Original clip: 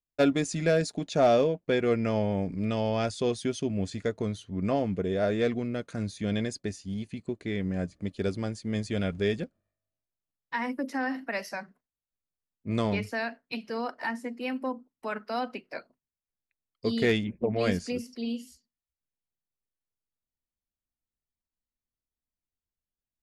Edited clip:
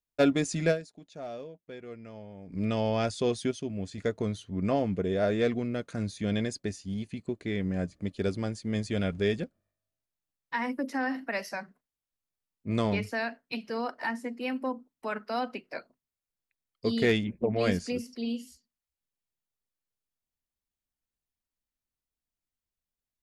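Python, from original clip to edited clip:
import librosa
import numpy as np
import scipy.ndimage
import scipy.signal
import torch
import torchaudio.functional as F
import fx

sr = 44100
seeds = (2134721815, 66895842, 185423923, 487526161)

y = fx.edit(x, sr, fx.fade_down_up(start_s=0.71, length_s=1.85, db=-18.0, fade_s=0.41, curve='exp'),
    fx.clip_gain(start_s=3.51, length_s=0.47, db=-5.0), tone=tone)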